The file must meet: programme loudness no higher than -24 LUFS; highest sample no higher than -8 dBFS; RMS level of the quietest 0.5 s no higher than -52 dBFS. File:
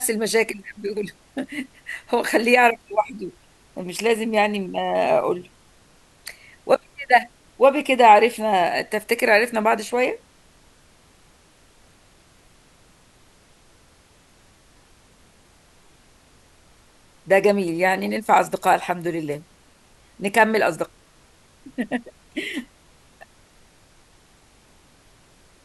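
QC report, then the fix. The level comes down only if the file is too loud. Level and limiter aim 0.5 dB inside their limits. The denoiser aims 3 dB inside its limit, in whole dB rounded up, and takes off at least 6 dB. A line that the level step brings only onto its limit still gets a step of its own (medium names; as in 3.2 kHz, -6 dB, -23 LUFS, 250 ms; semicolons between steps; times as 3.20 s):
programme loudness -20.5 LUFS: fail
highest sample -2.0 dBFS: fail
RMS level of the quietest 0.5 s -55 dBFS: pass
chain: trim -4 dB; peak limiter -8.5 dBFS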